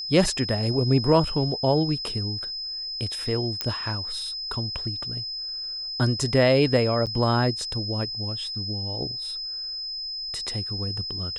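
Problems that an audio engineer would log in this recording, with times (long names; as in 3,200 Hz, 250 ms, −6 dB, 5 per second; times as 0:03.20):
whistle 5,100 Hz −30 dBFS
0:03.61: click −10 dBFS
0:07.06–0:07.07: drop-out 7.8 ms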